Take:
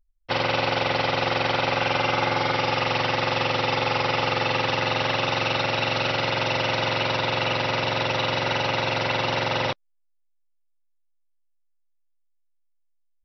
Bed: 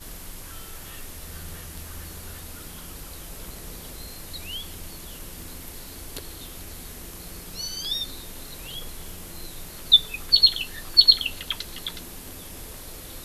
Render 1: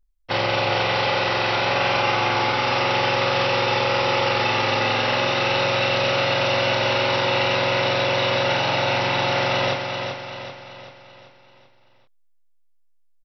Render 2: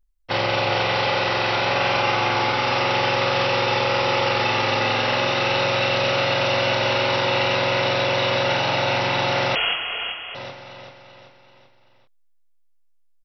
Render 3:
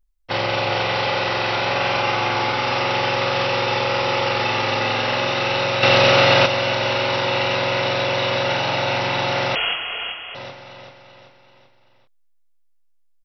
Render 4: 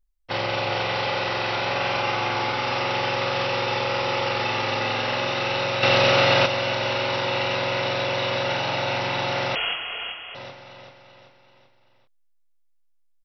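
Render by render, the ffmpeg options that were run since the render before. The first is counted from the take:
-filter_complex "[0:a]asplit=2[a][b];[b]adelay=29,volume=-2.5dB[c];[a][c]amix=inputs=2:normalize=0,aecho=1:1:386|772|1158|1544|1930|2316:0.501|0.241|0.115|0.0554|0.0266|0.0128"
-filter_complex "[0:a]asettb=1/sr,asplit=3[a][b][c];[a]atrim=end=9.554[d];[b]atrim=start=9.55:end=10.35,asetpts=PTS-STARTPTS,afade=t=in:d=0.004:c=qsin,afade=t=out:st=0.796:d=0.004:c=qsin,lowpass=f=2.9k:t=q:w=0.5098,lowpass=f=2.9k:t=q:w=0.6013,lowpass=f=2.9k:t=q:w=0.9,lowpass=f=2.9k:t=q:w=2.563,afreqshift=-3400[e];[c]atrim=start=10.346[f];[d][e]acrossfade=d=0.004:c1=hsin:c2=qsin[g];[g][f]acrossfade=d=0.004:c1=qsin:c2=hsin"
-filter_complex "[0:a]asplit=3[a][b][c];[a]atrim=end=5.832[d];[b]atrim=start=5.828:end=6.462,asetpts=PTS-STARTPTS,volume=7dB[e];[c]atrim=start=6.458[f];[d][e]acrossfade=d=0.004:c1=hsin:c2=hsin[g];[g][f]acrossfade=d=0.004:c1=hsin:c2=hsin"
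-af "volume=-4dB"

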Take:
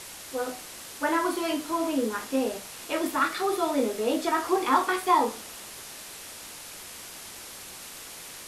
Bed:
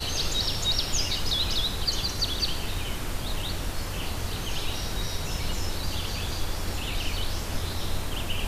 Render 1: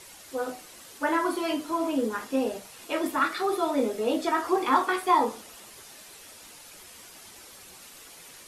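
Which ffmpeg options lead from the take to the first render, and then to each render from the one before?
-af "afftdn=nr=8:nf=-43"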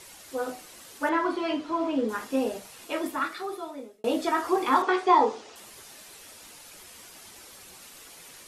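-filter_complex "[0:a]asettb=1/sr,asplit=3[a][b][c];[a]atrim=end=1.094[d];[b]atrim=start=1.09:end=2.09,asetpts=PTS-STARTPTS,afade=t=in:d=0.004:c=qsin,afade=t=out:st=0.996:d=0.004:c=qsin,lowpass=4.2k[e];[c]atrim=start=2.086[f];[d][e]acrossfade=d=0.004:c1=hsin:c2=qsin[g];[g][f]acrossfade=d=0.004:c1=qsin:c2=hsin,asettb=1/sr,asplit=3[h][i][j];[h]atrim=end=4.824[k];[i]atrim=start=4.82:end=5.56,asetpts=PTS-STARTPTS,afade=t=in:d=0.004:c=qsin,afade=t=out:st=0.736:d=0.004:c=qsin,highpass=110,equalizer=f=190:t=q:w=4:g=-9,equalizer=f=410:t=q:w=4:g=9,equalizer=f=810:t=q:w=4:g=5,lowpass=f=6.6k:w=0.5412,lowpass=f=6.6k:w=1.3066[l];[j]atrim=start=5.556[m];[k][l]acrossfade=d=0.004:c1=hsin:c2=qsin[n];[n][m]acrossfade=d=0.004:c1=qsin:c2=hsin,asplit=2[o][p];[o]atrim=end=4.04,asetpts=PTS-STARTPTS,afade=t=out:st=2.72:d=1.32[q];[p]atrim=start=4.04,asetpts=PTS-STARTPTS,afade=t=in:d=0.004:c=hsin[r];[q][r]concat=n=2:v=0:a=1"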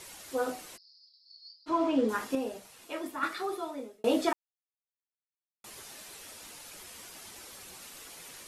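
-filter_complex "[0:a]asplit=3[a][b][c];[a]afade=t=out:st=0.76:d=0.02[d];[b]asuperpass=centerf=4700:order=8:qfactor=4.7,afade=t=in:st=0.76:d=0.02,afade=t=out:st=1.66:d=0.02[e];[c]afade=t=in:st=1.66:d=0.02[f];[d][e][f]amix=inputs=3:normalize=0,asplit=5[g][h][i][j][k];[g]atrim=end=2.352[l];[h]atrim=start=2.348:end=3.232,asetpts=PTS-STARTPTS,volume=-7dB[m];[i]atrim=start=3.228:end=4.33,asetpts=PTS-STARTPTS,afade=t=out:st=1.098:d=0.004:c=hsin[n];[j]atrim=start=4.33:end=5.64,asetpts=PTS-STARTPTS,volume=0[o];[k]atrim=start=5.64,asetpts=PTS-STARTPTS,afade=t=in:d=0.004:c=hsin[p];[l][m]acrossfade=d=0.004:c1=hsin:c2=hsin[q];[n][o][p]concat=n=3:v=0:a=1[r];[q][r]acrossfade=d=0.004:c1=hsin:c2=hsin"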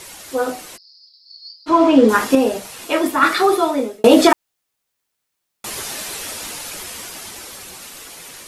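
-af "dynaudnorm=f=370:g=11:m=9.5dB,alimiter=level_in=10.5dB:limit=-1dB:release=50:level=0:latency=1"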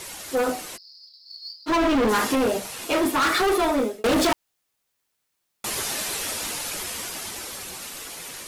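-af "acrusher=bits=7:mode=log:mix=0:aa=0.000001,asoftclip=type=hard:threshold=-18.5dB"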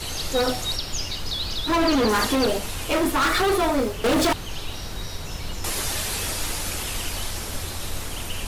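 -filter_complex "[1:a]volume=-2dB[a];[0:a][a]amix=inputs=2:normalize=0"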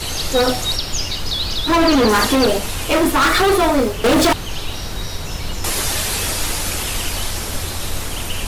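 -af "volume=6.5dB"

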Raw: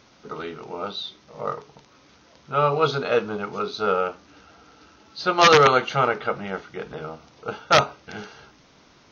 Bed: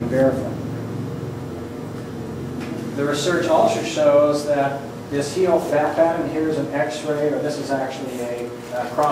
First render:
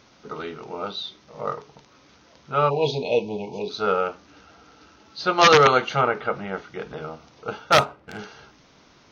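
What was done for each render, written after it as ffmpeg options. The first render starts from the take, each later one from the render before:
-filter_complex "[0:a]asplit=3[a][b][c];[a]afade=t=out:st=2.69:d=0.02[d];[b]asuperstop=centerf=1500:order=20:qfactor=1.2,afade=t=in:st=2.69:d=0.02,afade=t=out:st=3.69:d=0.02[e];[c]afade=t=in:st=3.69:d=0.02[f];[d][e][f]amix=inputs=3:normalize=0,asettb=1/sr,asplit=3[g][h][i];[g]atrim=end=6.014[j];[h]atrim=start=6.01:end=6.64,asetpts=PTS-STARTPTS,afade=t=in:d=0.004:c=qsin,afade=t=out:st=0.626:d=0.004:c=qsin,acrossover=split=2900[k][l];[l]acompressor=threshold=-51dB:ratio=4:attack=1:release=60[m];[k][m]amix=inputs=2:normalize=0[n];[i]atrim=start=6.636[o];[j][n]acrossfade=d=0.004:c1=hsin:c2=qsin[p];[p][o]acrossfade=d=0.004:c1=qsin:c2=hsin,asettb=1/sr,asplit=3[q][r][s];[q]atrim=end=7.724[t];[r]atrim=start=7.72:end=8.19,asetpts=PTS-STARTPTS,afade=t=in:d=0.004:c=qsin,afade=t=out:st=0.466:d=0.004:c=qsin,adynamicsmooth=sensitivity=7.5:basefreq=1.5k[u];[s]atrim=start=8.186[v];[t][u]acrossfade=d=0.004:c1=hsin:c2=qsin[w];[w][v]acrossfade=d=0.004:c1=qsin:c2=hsin"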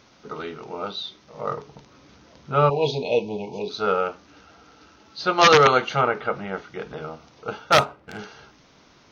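-filter_complex "[0:a]asettb=1/sr,asplit=3[a][b][c];[a]atrim=end=1.514[d];[b]atrim=start=1.51:end=2.7,asetpts=PTS-STARTPTS,afade=t=in:d=0.004:c=qsin,afade=t=out:st=1.186:d=0.004:c=qsin,lowshelf=f=420:g=7[e];[c]atrim=start=2.696[f];[d][e]acrossfade=d=0.004:c1=hsin:c2=qsin[g];[g][f]acrossfade=d=0.004:c1=qsin:c2=hsin"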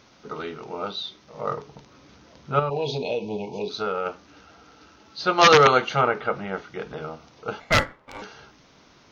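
-filter_complex "[0:a]asettb=1/sr,asplit=3[a][b][c];[a]atrim=end=2.594[d];[b]atrim=start=2.59:end=4.06,asetpts=PTS-STARTPTS,afade=t=in:d=0.004:c=qsin,afade=t=out:st=1.466:d=0.004:c=qsin,acompressor=threshold=-22dB:ratio=6:attack=3.2:release=140:knee=1:detection=peak[e];[c]atrim=start=4.056[f];[d][e]acrossfade=d=0.004:c1=hsin:c2=qsin[g];[g][f]acrossfade=d=0.004:c1=qsin:c2=hsin,asettb=1/sr,asplit=3[h][i][j];[h]atrim=end=7.604[k];[i]atrim=start=7.6:end=8.22,asetpts=PTS-STARTPTS,afade=t=in:d=0.004:c=qsin,afade=t=out:st=0.616:d=0.004:c=qsin,aeval=exprs='val(0)*sin(2*PI*720*n/s)':c=same[l];[j]atrim=start=8.216[m];[k][l]acrossfade=d=0.004:c1=hsin:c2=qsin[n];[n][m]acrossfade=d=0.004:c1=qsin:c2=hsin"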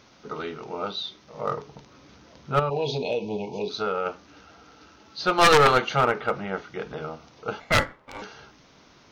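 -af "aeval=exprs='clip(val(0),-1,0.133)':c=same"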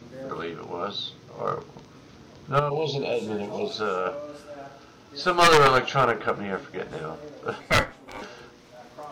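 -filter_complex "[1:a]volume=-22dB[a];[0:a][a]amix=inputs=2:normalize=0"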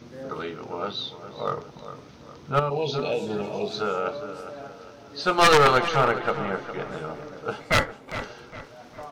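-filter_complex "[0:a]asplit=2[a][b];[b]adelay=408,lowpass=f=3k:p=1,volume=-11.5dB,asplit=2[c][d];[d]adelay=408,lowpass=f=3k:p=1,volume=0.44,asplit=2[e][f];[f]adelay=408,lowpass=f=3k:p=1,volume=0.44,asplit=2[g][h];[h]adelay=408,lowpass=f=3k:p=1,volume=0.44[i];[a][c][e][g][i]amix=inputs=5:normalize=0"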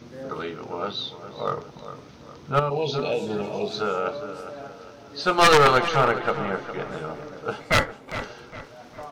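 -af "volume=1dB"

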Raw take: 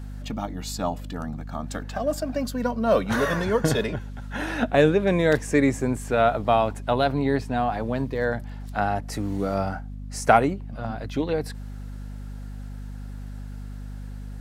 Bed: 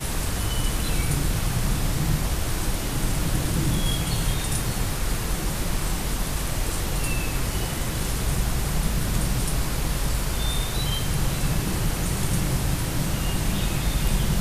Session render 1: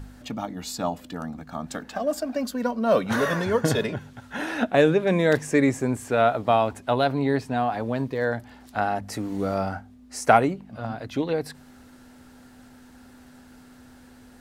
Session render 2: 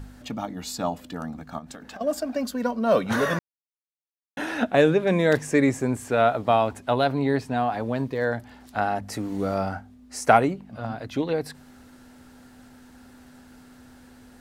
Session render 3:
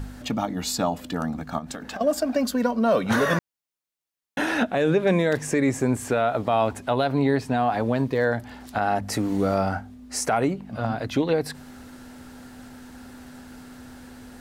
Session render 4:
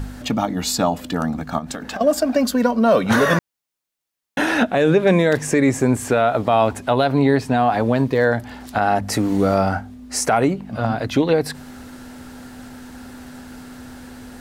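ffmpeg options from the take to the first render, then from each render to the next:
-af "bandreject=f=50:t=h:w=4,bandreject=f=100:t=h:w=4,bandreject=f=150:t=h:w=4,bandreject=f=200:t=h:w=4"
-filter_complex "[0:a]asettb=1/sr,asplit=3[a][b][c];[a]atrim=end=1.584[d];[b]atrim=start=1.58:end=2.01,asetpts=PTS-STARTPTS,afade=t=in:d=0.004:c=qsin,afade=t=out:st=0.426:d=0.004:c=qsin,acompressor=threshold=-36dB:ratio=12:attack=3.2:release=140:knee=1:detection=peak[e];[c]atrim=start=2.006[f];[d][e]acrossfade=d=0.004:c1=hsin:c2=qsin[g];[g][f]acrossfade=d=0.004:c1=qsin:c2=hsin,asplit=3[h][i][j];[h]atrim=end=3.39,asetpts=PTS-STARTPTS,afade=t=out:st=3.386:d=0.004:c=hsin[k];[i]atrim=start=3.39:end=4.37,asetpts=PTS-STARTPTS,volume=0[l];[j]atrim=start=4.37,asetpts=PTS-STARTPTS,afade=t=in:d=0.004:c=hsin[m];[k][l][m]concat=n=3:v=0:a=1"
-filter_complex "[0:a]asplit=2[a][b];[b]acompressor=threshold=-28dB:ratio=6,volume=0.5dB[c];[a][c]amix=inputs=2:normalize=0,alimiter=limit=-11.5dB:level=0:latency=1:release=85"
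-af "volume=5.5dB"

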